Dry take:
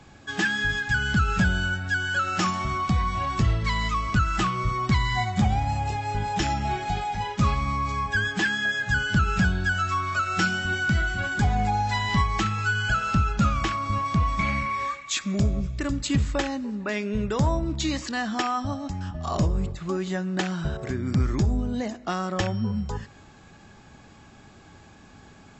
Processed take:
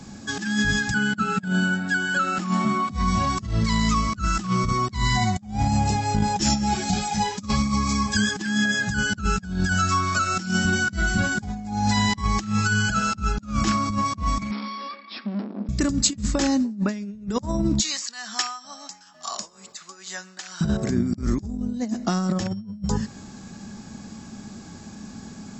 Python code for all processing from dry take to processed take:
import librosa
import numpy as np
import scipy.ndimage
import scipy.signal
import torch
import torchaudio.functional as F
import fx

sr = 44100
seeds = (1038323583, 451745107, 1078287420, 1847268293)

y = fx.chain(x, sr, fx.highpass(hz=170.0, slope=24),
    fx.peak_eq(hz=5800.0, db=-13.0, octaves=0.76), at=(0.94, 2.91))
y = fx.chain(y, sr, fx.high_shelf(hz=3200.0, db=9.0),
    fx.ensemble(), at=(6.41, 8.36))
y = fx.chain(y, sr, fx.air_absorb(metres=350.0),
    fx.tube_stage(drive_db=35.0, bias=0.75),
    fx.brickwall_bandpass(low_hz=200.0, high_hz=5600.0), at=(14.51, 15.69))
y = fx.chain(y, sr, fx.tremolo_shape(shape='triangle', hz=2.2, depth_pct=80),
    fx.highpass(hz=1200.0, slope=12), at=(17.8, 20.61))
y = fx.peak_eq(y, sr, hz=210.0, db=15.0, octaves=0.64)
y = fx.over_compress(y, sr, threshold_db=-23.0, ratio=-0.5)
y = fx.high_shelf_res(y, sr, hz=4000.0, db=8.0, q=1.5)